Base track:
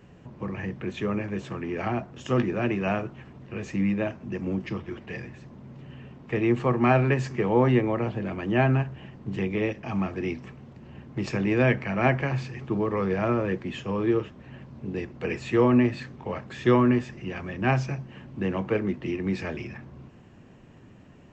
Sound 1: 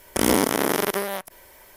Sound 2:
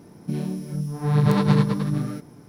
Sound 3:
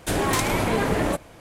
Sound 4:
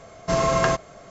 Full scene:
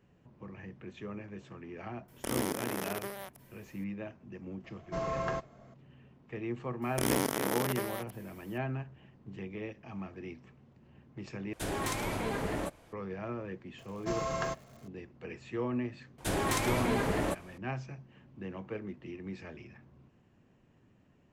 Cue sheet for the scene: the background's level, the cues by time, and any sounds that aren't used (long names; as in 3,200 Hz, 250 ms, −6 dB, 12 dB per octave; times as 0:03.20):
base track −14 dB
0:02.08: mix in 1 −14.5 dB
0:04.64: mix in 4 −12.5 dB + low-pass filter 2,000 Hz 6 dB per octave
0:06.82: mix in 1 −10.5 dB
0:11.53: overwrite with 3 −11.5 dB
0:13.78: mix in 4 −13.5 dB + surface crackle 390 per second −37 dBFS
0:16.18: mix in 3 −8 dB
not used: 2